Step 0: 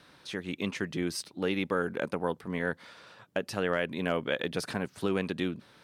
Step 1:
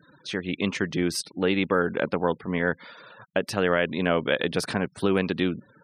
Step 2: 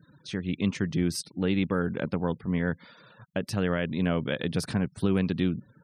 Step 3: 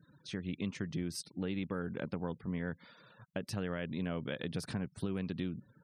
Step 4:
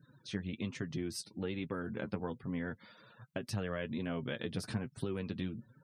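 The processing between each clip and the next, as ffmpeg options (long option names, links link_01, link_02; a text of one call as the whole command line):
ffmpeg -i in.wav -af "afftfilt=real='re*gte(hypot(re,im),0.00316)':imag='im*gte(hypot(re,im),0.00316)':win_size=1024:overlap=0.75,volume=6.5dB" out.wav
ffmpeg -i in.wav -af "bass=frequency=250:gain=14,treble=frequency=4000:gain=5,volume=-8dB" out.wav
ffmpeg -i in.wav -af "acompressor=threshold=-28dB:ratio=3,volume=-6dB" out.wav
ffmpeg -i in.wav -af "flanger=delay=7.3:depth=2.6:regen=31:speed=1.2:shape=triangular,volume=4dB" out.wav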